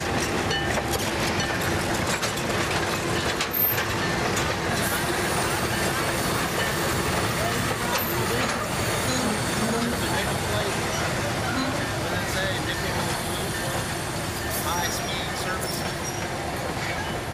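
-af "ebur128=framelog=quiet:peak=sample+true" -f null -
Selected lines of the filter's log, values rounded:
Integrated loudness:
  I:         -24.9 LUFS
  Threshold: -34.9 LUFS
Loudness range:
  LRA:         3.0 LU
  Threshold: -44.8 LUFS
  LRA low:   -26.7 LUFS
  LRA high:  -23.7 LUFS
Sample peak:
  Peak:      -11.3 dBFS
True peak:
  Peak:      -11.1 dBFS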